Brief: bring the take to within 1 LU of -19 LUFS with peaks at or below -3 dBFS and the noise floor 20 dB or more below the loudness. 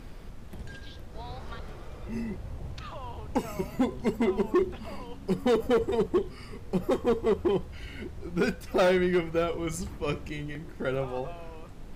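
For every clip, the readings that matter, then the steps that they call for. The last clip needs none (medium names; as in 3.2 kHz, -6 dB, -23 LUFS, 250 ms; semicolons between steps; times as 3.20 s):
clipped samples 1.5%; clipping level -19.0 dBFS; noise floor -44 dBFS; noise floor target -50 dBFS; loudness -29.5 LUFS; peak level -19.0 dBFS; loudness target -19.0 LUFS
-> clip repair -19 dBFS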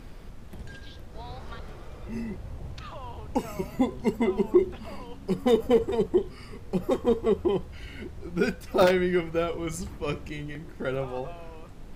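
clipped samples 0.0%; noise floor -44 dBFS; noise floor target -48 dBFS
-> noise print and reduce 6 dB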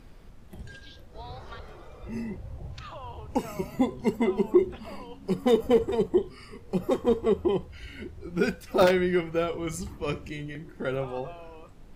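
noise floor -49 dBFS; loudness -27.5 LUFS; peak level -10.0 dBFS; loudness target -19.0 LUFS
-> trim +8.5 dB; peak limiter -3 dBFS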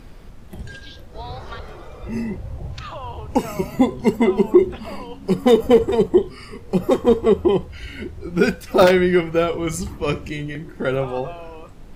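loudness -19.5 LUFS; peak level -3.0 dBFS; noise floor -40 dBFS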